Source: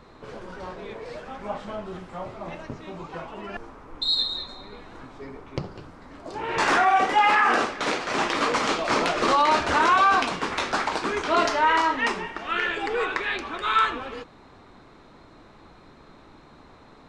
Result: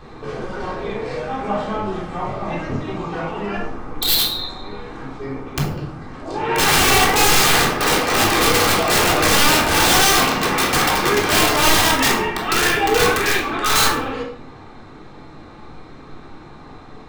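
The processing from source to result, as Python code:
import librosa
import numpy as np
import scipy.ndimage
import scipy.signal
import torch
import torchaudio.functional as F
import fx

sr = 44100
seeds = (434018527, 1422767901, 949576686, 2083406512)

p1 = fx.rider(x, sr, range_db=3, speed_s=0.5)
p2 = x + (p1 * 10.0 ** (-1.5 / 20.0))
p3 = (np.mod(10.0 ** (12.5 / 20.0) * p2 + 1.0, 2.0) - 1.0) / 10.0 ** (12.5 / 20.0)
p4 = fx.room_shoebox(p3, sr, seeds[0], volume_m3=930.0, walls='furnished', distance_m=3.7)
y = p4 * 10.0 ** (-1.5 / 20.0)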